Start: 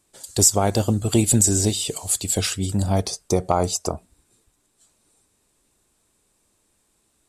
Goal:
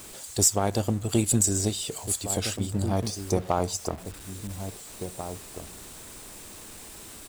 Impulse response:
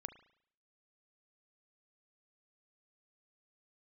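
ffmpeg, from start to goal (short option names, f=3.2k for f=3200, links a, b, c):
-filter_complex "[0:a]aeval=exprs='val(0)+0.5*0.0376*sgn(val(0))':c=same,asplit=2[a][b];[b]adelay=1691,volume=-7dB,highshelf=f=4k:g=-38[c];[a][c]amix=inputs=2:normalize=0,aeval=exprs='0.708*(cos(1*acos(clip(val(0)/0.708,-1,1)))-cos(1*PI/2))+0.0398*(cos(7*acos(clip(val(0)/0.708,-1,1)))-cos(7*PI/2))':c=same,volume=-5.5dB"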